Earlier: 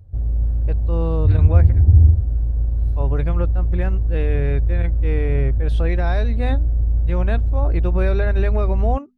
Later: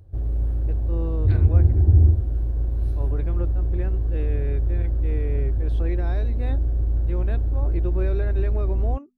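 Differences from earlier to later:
first voice -11.5 dB; background: add tilt shelf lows -4 dB, about 640 Hz; master: add bell 350 Hz +9.5 dB 0.57 oct

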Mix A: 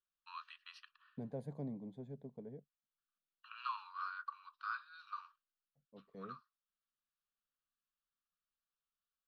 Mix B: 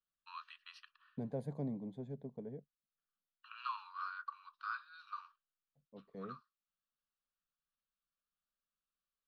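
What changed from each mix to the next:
second voice +3.5 dB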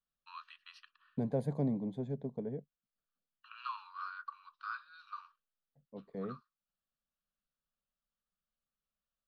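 second voice +7.0 dB

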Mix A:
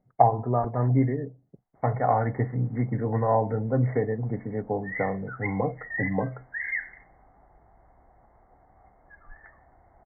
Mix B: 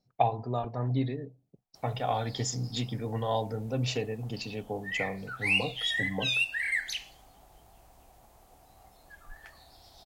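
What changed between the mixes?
speech -7.0 dB; master: remove brick-wall FIR low-pass 2200 Hz

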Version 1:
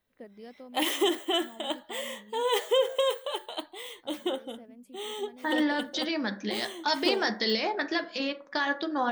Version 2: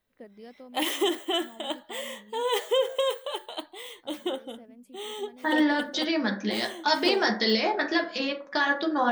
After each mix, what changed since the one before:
second voice: send +7.5 dB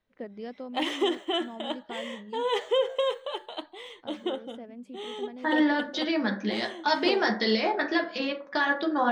first voice +8.0 dB; master: add air absorption 110 m

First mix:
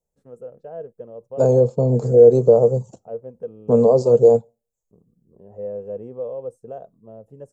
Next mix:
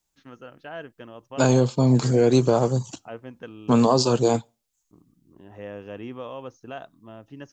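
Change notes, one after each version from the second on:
first voice: add brick-wall FIR low-pass 6800 Hz; master: remove EQ curve 120 Hz 0 dB, 210 Hz +2 dB, 300 Hz -11 dB, 470 Hz +12 dB, 980 Hz -10 dB, 1400 Hz -17 dB, 2300 Hz -23 dB, 3200 Hz -26 dB, 7700 Hz -11 dB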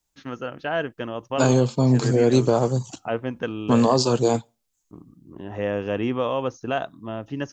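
first voice +11.5 dB

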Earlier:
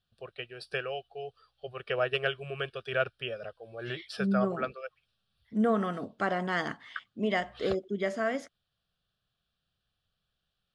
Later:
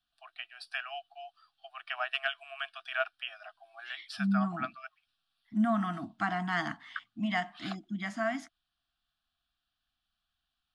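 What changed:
first voice: add steep high-pass 430 Hz 72 dB/oct; master: add Chebyshev band-stop 330–670 Hz, order 4

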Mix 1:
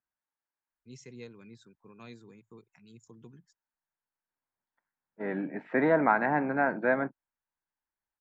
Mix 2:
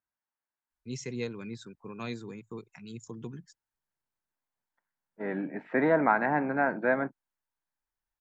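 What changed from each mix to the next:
first voice +11.0 dB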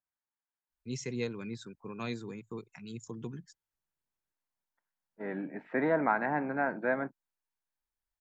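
second voice -4.0 dB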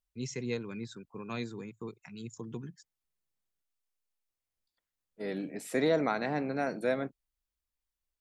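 first voice: entry -0.70 s; second voice: remove speaker cabinet 140–2100 Hz, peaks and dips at 460 Hz -5 dB, 910 Hz +9 dB, 1600 Hz +7 dB

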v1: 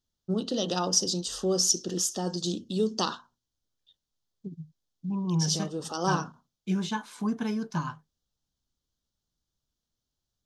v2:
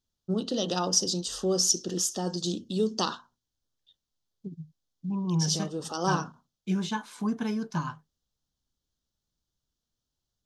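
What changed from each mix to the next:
none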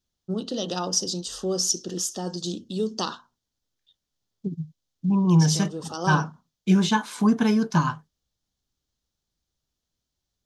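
second voice +9.5 dB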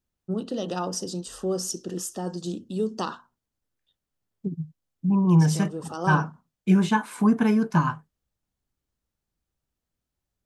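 master: add band shelf 4600 Hz -9.5 dB 1.3 oct

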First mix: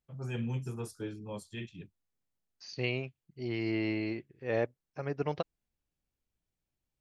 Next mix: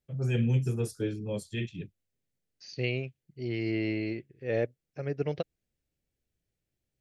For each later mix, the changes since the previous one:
first voice +5.5 dB; master: add ten-band EQ 125 Hz +4 dB, 500 Hz +5 dB, 1000 Hz -12 dB, 2000 Hz +3 dB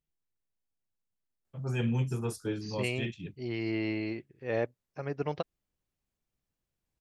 first voice: entry +1.45 s; master: add ten-band EQ 125 Hz -4 dB, 500 Hz -5 dB, 1000 Hz +12 dB, 2000 Hz -3 dB

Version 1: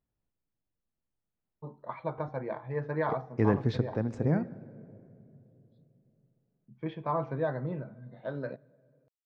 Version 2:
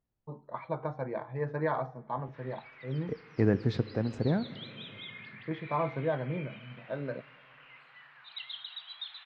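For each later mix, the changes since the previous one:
first voice: entry -1.35 s; background: unmuted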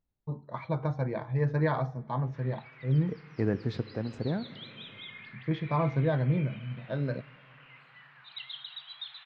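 first voice: remove band-pass 810 Hz, Q 0.52; second voice -3.0 dB

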